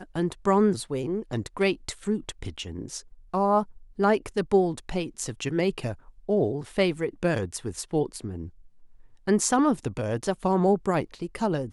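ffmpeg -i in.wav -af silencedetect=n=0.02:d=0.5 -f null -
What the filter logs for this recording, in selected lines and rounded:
silence_start: 8.47
silence_end: 9.27 | silence_duration: 0.80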